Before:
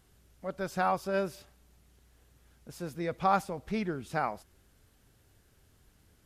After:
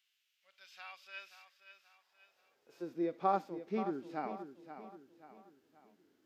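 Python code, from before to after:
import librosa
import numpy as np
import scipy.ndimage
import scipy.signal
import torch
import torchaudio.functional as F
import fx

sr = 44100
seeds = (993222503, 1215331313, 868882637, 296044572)

y = fx.peak_eq(x, sr, hz=9800.0, db=-14.5, octaves=0.67)
y = fx.filter_sweep_highpass(y, sr, from_hz=2700.0, to_hz=300.0, start_s=1.24, end_s=2.94, q=2.6)
y = fx.hpss(y, sr, part='percussive', gain_db=-14)
y = fx.echo_feedback(y, sr, ms=530, feedback_pct=42, wet_db=-11.0)
y = F.gain(torch.from_numpy(y), -4.5).numpy()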